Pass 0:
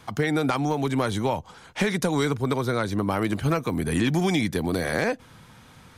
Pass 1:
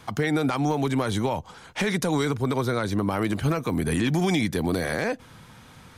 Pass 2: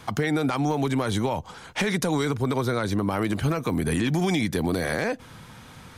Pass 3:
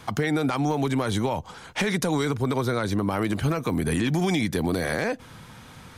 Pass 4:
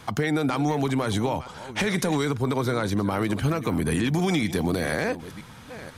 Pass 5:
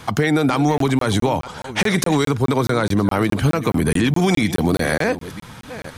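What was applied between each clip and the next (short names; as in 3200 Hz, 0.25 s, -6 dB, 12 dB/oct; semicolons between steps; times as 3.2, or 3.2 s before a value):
limiter -17 dBFS, peak gain reduction 5.5 dB; gain +1.5 dB
compressor 2:1, threshold -26 dBFS, peak gain reduction 4 dB; gain +3 dB
nothing audible
reverse delay 0.492 s, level -14 dB
crackling interface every 0.21 s, samples 1024, zero, from 0.78; gain +7 dB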